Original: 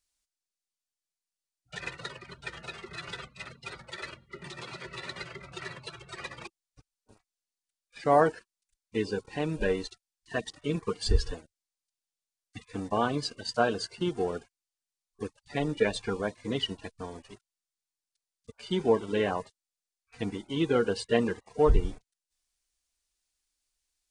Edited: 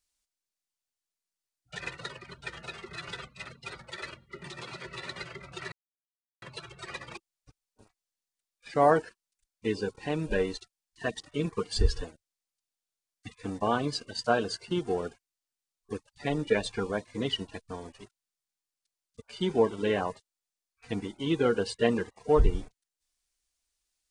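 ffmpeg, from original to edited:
-filter_complex "[0:a]asplit=2[s0][s1];[s0]atrim=end=5.72,asetpts=PTS-STARTPTS,afade=t=out:st=5.716:d=0.004:c=hsin,apad=pad_dur=0.7[s2];[s1]atrim=start=5.72,asetpts=PTS-STARTPTS,afade=t=in:d=0.004:c=hsin[s3];[s2][s3]concat=n=2:v=0:a=1"

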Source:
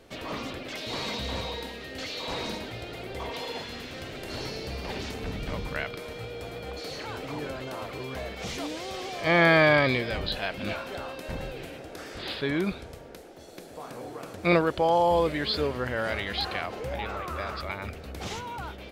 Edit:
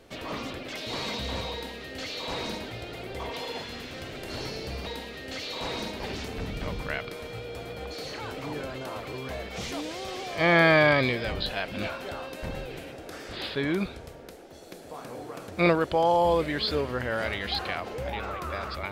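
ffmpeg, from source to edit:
-filter_complex "[0:a]asplit=3[s0][s1][s2];[s0]atrim=end=4.862[s3];[s1]atrim=start=1.528:end=2.672[s4];[s2]atrim=start=4.858[s5];[s3][s4]acrossfade=d=0.004:c1=hsin:c2=hsin[s6];[s6][s5]acrossfade=d=0.004:c1=hsin:c2=hsin"

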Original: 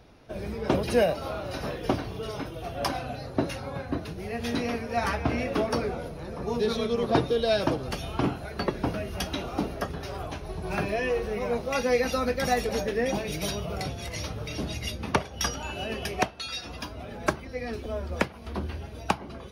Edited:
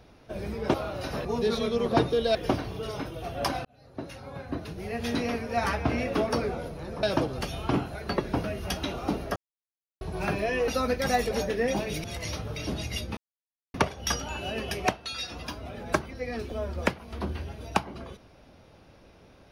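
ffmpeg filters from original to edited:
-filter_complex "[0:a]asplit=11[s0][s1][s2][s3][s4][s5][s6][s7][s8][s9][s10];[s0]atrim=end=0.742[s11];[s1]atrim=start=1.238:end=1.752[s12];[s2]atrim=start=6.428:end=7.532[s13];[s3]atrim=start=1.748:end=3.05,asetpts=PTS-STARTPTS,afade=t=out:st=1.298:d=0.004:c=hsin[s14];[s4]atrim=start=3.05:end=6.432,asetpts=PTS-STARTPTS,afade=t=in:d=1.26[s15];[s5]atrim=start=7.528:end=9.86,asetpts=PTS-STARTPTS,afade=t=out:st=2.328:d=0.004:c=hsin[s16];[s6]atrim=start=9.86:end=10.51,asetpts=PTS-STARTPTS,volume=0[s17];[s7]atrim=start=10.51:end=11.182,asetpts=PTS-STARTPTS,afade=t=in:d=0.004:c=hsin[s18];[s8]atrim=start=12.058:end=13.422[s19];[s9]atrim=start=13.948:end=15.08,asetpts=PTS-STARTPTS,afade=t=out:st=1.128:d=0.004:c=hsin,apad=pad_dur=0.57[s20];[s10]atrim=start=15.08,asetpts=PTS-STARTPTS,afade=t=in:d=0.004:c=hsin[s21];[s11][s12]acrossfade=d=0.004:c1=hsin:c2=hsin[s22];[s22][s13]acrossfade=d=0.004:c1=hsin:c2=hsin[s23];[s14][s15]concat=n=2:v=0:a=1[s24];[s23][s24]acrossfade=d=0.004:c1=hsin:c2=hsin[s25];[s16][s17][s18]concat=n=3:v=0:a=1[s26];[s25][s26]acrossfade=d=0.004:c1=hsin:c2=hsin[s27];[s27][s19]acrossfade=d=0.004:c1=hsin:c2=hsin[s28];[s20][s21]concat=n=2:v=0:a=1[s29];[s28][s29]acrossfade=d=0.004:c1=hsin:c2=hsin"

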